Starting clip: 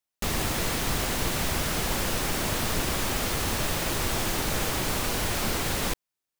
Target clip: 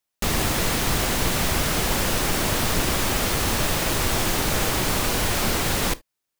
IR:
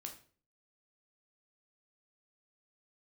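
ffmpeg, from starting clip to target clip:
-filter_complex "[0:a]asplit=2[a][b];[1:a]atrim=start_sample=2205,atrim=end_sample=3528[c];[b][c]afir=irnorm=-1:irlink=0,volume=-6.5dB[d];[a][d]amix=inputs=2:normalize=0,volume=3dB"

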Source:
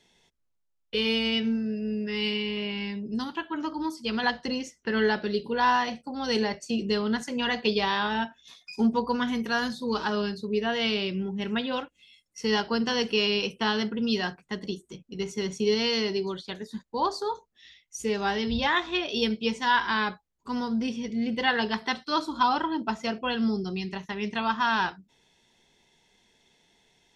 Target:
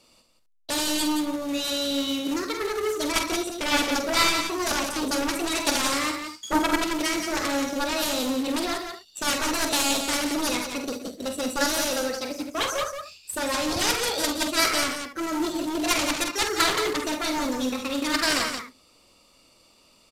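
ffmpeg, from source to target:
-filter_complex "[0:a]asetrate=59535,aresample=44100,asplit=2[a][b];[b]aecho=0:1:72:0.224[c];[a][c]amix=inputs=2:normalize=0,aeval=exprs='0.299*(cos(1*acos(clip(val(0)/0.299,-1,1)))-cos(1*PI/2))+0.119*(cos(7*acos(clip(val(0)/0.299,-1,1)))-cos(7*PI/2))':c=same,asplit=2[d][e];[e]aecho=0:1:46.65|174.9:0.398|0.447[f];[d][f]amix=inputs=2:normalize=0,acrusher=bits=3:mode=log:mix=0:aa=0.000001,aresample=32000,aresample=44100"

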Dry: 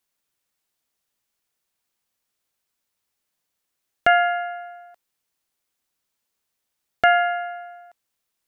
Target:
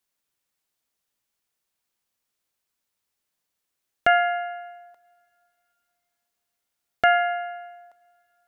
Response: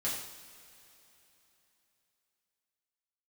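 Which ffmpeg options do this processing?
-filter_complex "[0:a]asplit=2[a][b];[1:a]atrim=start_sample=2205,adelay=102[c];[b][c]afir=irnorm=-1:irlink=0,volume=-27.5dB[d];[a][d]amix=inputs=2:normalize=0,volume=-2dB"

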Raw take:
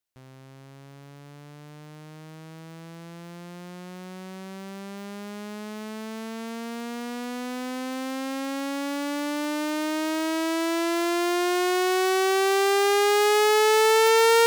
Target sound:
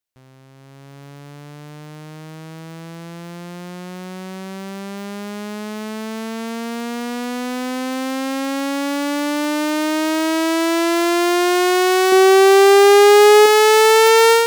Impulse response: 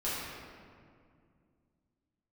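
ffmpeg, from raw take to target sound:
-filter_complex "[0:a]dynaudnorm=f=530:g=3:m=8dB,asettb=1/sr,asplit=3[a][b][c];[a]atrim=end=12.124[d];[b]atrim=start=12.12:end=13.46,asetpts=PTS-STARTPTS,afade=t=in:d=0.004:c=qsin,afade=t=out:st=1.336:d=0.004:c=qsin,lowshelf=f=470:g=8.5[e];[c]atrim=start=13.456[f];[d][e]acrossfade=d=0.004:c1=hsin:c2=qsin[g];[g][f]acrossfade=d=0.004:c1=qsin:c2=hsin"

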